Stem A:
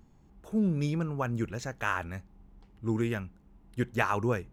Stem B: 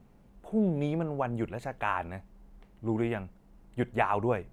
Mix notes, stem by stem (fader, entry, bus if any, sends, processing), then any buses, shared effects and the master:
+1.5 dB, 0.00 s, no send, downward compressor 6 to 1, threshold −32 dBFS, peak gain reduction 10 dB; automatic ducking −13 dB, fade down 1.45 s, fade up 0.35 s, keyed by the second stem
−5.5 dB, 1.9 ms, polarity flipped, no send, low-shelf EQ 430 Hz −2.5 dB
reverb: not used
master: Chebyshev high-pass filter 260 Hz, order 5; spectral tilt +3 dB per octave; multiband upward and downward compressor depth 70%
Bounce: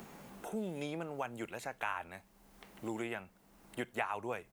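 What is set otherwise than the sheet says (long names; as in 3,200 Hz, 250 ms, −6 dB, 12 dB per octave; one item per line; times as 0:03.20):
stem A +1.5 dB → −8.0 dB
master: missing Chebyshev high-pass filter 260 Hz, order 5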